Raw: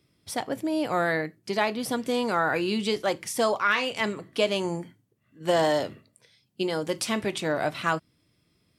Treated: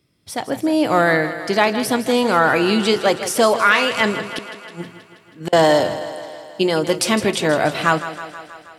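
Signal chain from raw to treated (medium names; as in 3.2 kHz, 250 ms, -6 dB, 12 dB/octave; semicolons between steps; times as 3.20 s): level rider gain up to 8 dB; 4.25–5.53 s: inverted gate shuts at -13 dBFS, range -35 dB; on a send: thinning echo 160 ms, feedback 67%, high-pass 160 Hz, level -12 dB; on the sum: trim +2 dB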